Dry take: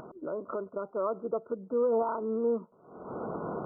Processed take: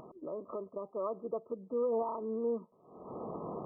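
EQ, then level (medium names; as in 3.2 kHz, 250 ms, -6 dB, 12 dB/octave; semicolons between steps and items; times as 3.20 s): brick-wall FIR low-pass 1.3 kHz; -5.0 dB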